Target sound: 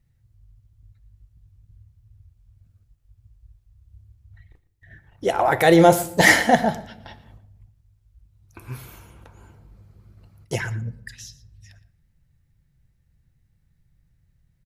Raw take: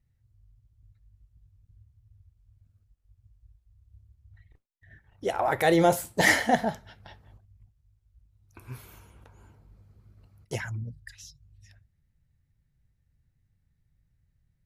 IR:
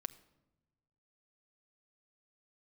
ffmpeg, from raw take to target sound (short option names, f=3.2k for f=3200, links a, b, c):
-filter_complex "[0:a]aecho=1:1:116:0.133,asplit=2[a][b];[1:a]atrim=start_sample=2205[c];[b][c]afir=irnorm=-1:irlink=0,volume=9dB[d];[a][d]amix=inputs=2:normalize=0,volume=-3dB"